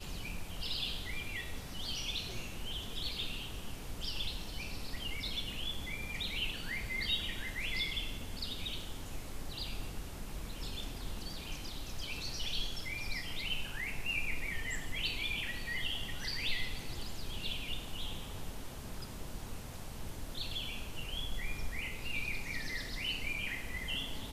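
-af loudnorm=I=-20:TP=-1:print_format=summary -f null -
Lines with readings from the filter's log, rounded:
Input Integrated:    -39.0 LUFS
Input True Peak:     -21.0 dBTP
Input LRA:             6.6 LU
Input Threshold:     -49.0 LUFS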